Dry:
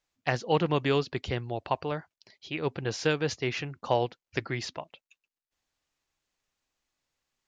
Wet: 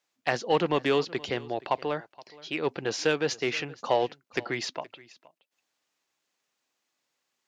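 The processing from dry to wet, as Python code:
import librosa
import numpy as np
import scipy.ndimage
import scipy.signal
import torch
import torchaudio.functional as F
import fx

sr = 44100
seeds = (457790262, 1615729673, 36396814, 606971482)

p1 = scipy.signal.sosfilt(scipy.signal.butter(2, 230.0, 'highpass', fs=sr, output='sos'), x)
p2 = 10.0 ** (-24.5 / 20.0) * np.tanh(p1 / 10.0 ** (-24.5 / 20.0))
p3 = p1 + F.gain(torch.from_numpy(p2), -3.0).numpy()
p4 = p3 + 10.0 ** (-21.5 / 20.0) * np.pad(p3, (int(472 * sr / 1000.0), 0))[:len(p3)]
y = F.gain(torch.from_numpy(p4), -1.0).numpy()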